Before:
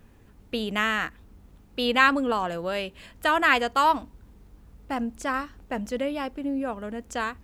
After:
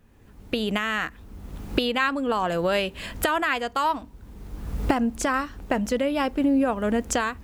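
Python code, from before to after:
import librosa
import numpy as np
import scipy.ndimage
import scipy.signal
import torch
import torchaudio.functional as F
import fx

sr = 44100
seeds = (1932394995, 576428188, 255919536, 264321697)

y = fx.recorder_agc(x, sr, target_db=-9.5, rise_db_per_s=28.0, max_gain_db=30)
y = y * 10.0 ** (-5.0 / 20.0)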